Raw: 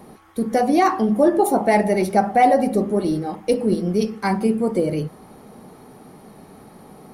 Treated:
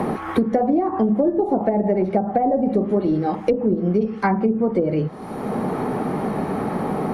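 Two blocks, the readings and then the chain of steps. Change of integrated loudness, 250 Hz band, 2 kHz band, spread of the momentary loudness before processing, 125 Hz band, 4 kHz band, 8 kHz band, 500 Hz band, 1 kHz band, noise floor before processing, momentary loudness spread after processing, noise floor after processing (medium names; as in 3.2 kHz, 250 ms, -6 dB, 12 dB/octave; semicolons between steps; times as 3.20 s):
-2.0 dB, +1.0 dB, -5.0 dB, 8 LU, +2.5 dB, no reading, under -10 dB, -0.5 dB, -3.5 dB, -46 dBFS, 5 LU, -32 dBFS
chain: low-pass that closes with the level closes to 520 Hz, closed at -12.5 dBFS; three bands compressed up and down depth 100%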